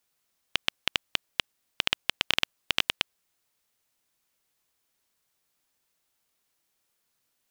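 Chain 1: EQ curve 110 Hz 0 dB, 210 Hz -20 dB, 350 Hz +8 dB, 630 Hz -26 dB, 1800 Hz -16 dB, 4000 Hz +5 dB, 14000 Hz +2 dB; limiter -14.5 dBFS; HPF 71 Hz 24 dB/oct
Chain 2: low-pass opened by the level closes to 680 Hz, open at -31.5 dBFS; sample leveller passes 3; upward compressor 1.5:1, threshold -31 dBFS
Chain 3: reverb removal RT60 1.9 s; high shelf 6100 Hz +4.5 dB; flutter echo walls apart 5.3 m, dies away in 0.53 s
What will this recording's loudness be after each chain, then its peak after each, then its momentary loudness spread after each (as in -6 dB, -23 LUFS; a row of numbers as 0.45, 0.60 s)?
-39.5, -25.0, -26.5 LUFS; -14.5, -2.5, -2.0 dBFS; 7, 7, 7 LU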